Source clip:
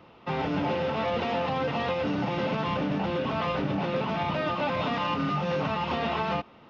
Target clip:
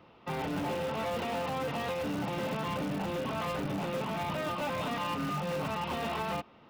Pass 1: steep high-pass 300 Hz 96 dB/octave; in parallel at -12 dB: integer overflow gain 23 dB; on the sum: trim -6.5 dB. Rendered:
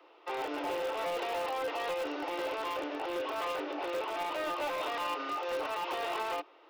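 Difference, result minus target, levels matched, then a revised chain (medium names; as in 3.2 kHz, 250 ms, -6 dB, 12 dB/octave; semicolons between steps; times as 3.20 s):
250 Hz band -6.5 dB
in parallel at -12 dB: integer overflow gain 23 dB; on the sum: trim -6.5 dB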